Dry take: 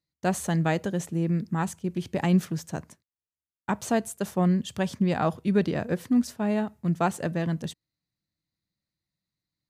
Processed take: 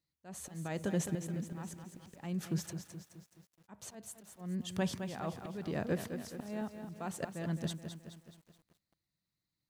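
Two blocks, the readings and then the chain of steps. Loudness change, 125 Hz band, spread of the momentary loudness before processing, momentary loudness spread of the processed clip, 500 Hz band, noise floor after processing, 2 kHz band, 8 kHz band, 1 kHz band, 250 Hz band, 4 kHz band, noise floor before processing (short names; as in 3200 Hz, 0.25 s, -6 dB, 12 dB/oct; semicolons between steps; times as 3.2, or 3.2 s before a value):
-12.5 dB, -12.0 dB, 8 LU, 15 LU, -12.0 dB, under -85 dBFS, -12.0 dB, -7.0 dB, -15.5 dB, -13.0 dB, -7.5 dB, under -85 dBFS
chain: limiter -20.5 dBFS, peak gain reduction 8 dB; auto swell 0.543 s; lo-fi delay 0.212 s, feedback 55%, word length 10-bit, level -8 dB; gain -1.5 dB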